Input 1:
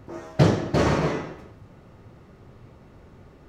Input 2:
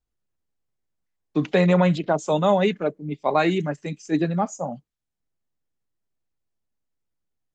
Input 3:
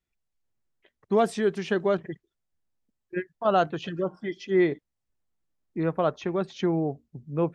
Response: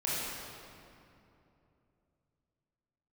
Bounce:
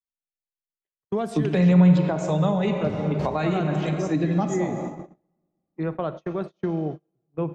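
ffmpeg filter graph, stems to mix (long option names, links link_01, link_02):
-filter_complex "[0:a]adelay=2450,volume=-12dB[link_01];[1:a]volume=0dB,asplit=3[link_02][link_03][link_04];[link_03]volume=-10.5dB[link_05];[2:a]volume=-2dB,asplit=3[link_06][link_07][link_08];[link_06]atrim=end=1.72,asetpts=PTS-STARTPTS,afade=type=out:start_time=1.716:duration=0.004:curve=hsin[link_09];[link_07]atrim=start=1.72:end=3.28,asetpts=PTS-STARTPTS,volume=0[link_10];[link_08]atrim=start=3.28,asetpts=PTS-STARTPTS,afade=type=in:duration=0.004:curve=hsin[link_11];[link_09][link_10][link_11]concat=n=3:v=0:a=1,asplit=2[link_12][link_13];[link_13]volume=-17dB[link_14];[link_04]apad=whole_len=261542[link_15];[link_01][link_15]sidechaincompress=threshold=-23dB:ratio=8:attack=24:release=267[link_16];[3:a]atrim=start_sample=2205[link_17];[link_05][link_14]amix=inputs=2:normalize=0[link_18];[link_18][link_17]afir=irnorm=-1:irlink=0[link_19];[link_16][link_02][link_12][link_19]amix=inputs=4:normalize=0,agate=range=-36dB:threshold=-30dB:ratio=16:detection=peak,lowshelf=frequency=110:gain=6,acrossover=split=200[link_20][link_21];[link_21]acompressor=threshold=-24dB:ratio=5[link_22];[link_20][link_22]amix=inputs=2:normalize=0"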